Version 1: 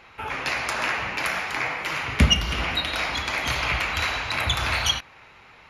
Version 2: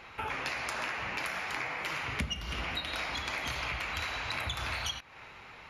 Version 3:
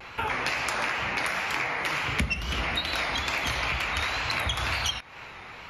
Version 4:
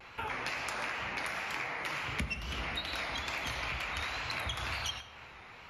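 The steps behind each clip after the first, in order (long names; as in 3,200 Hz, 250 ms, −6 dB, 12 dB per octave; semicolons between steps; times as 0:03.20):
downward compressor 6 to 1, threshold −33 dBFS, peak gain reduction 19.5 dB
tape wow and flutter 91 cents; level +7 dB
convolution reverb RT60 1.5 s, pre-delay 70 ms, DRR 12.5 dB; level −8.5 dB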